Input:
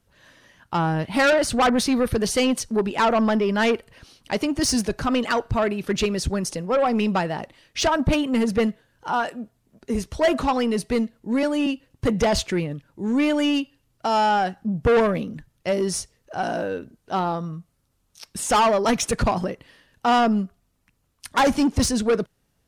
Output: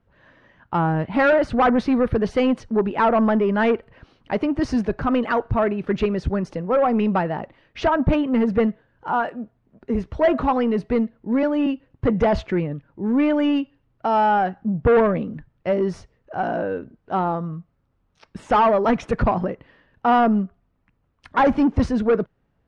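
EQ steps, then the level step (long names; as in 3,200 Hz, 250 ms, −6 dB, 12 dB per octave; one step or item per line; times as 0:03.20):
low-pass filter 1,800 Hz 12 dB per octave
+2.0 dB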